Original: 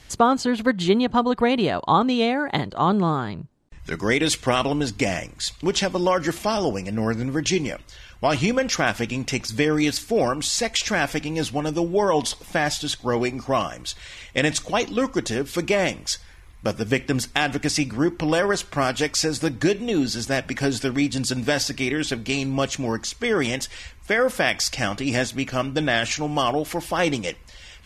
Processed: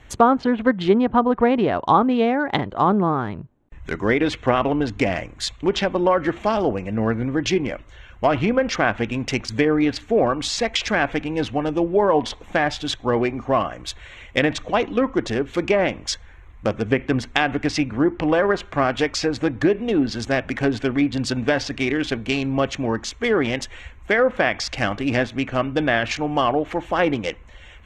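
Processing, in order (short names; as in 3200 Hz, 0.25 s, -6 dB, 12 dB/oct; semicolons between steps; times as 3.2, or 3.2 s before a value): Wiener smoothing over 9 samples; treble ducked by the level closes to 1900 Hz, closed at -16 dBFS; bell 160 Hz -5 dB 0.47 oct; gain +3 dB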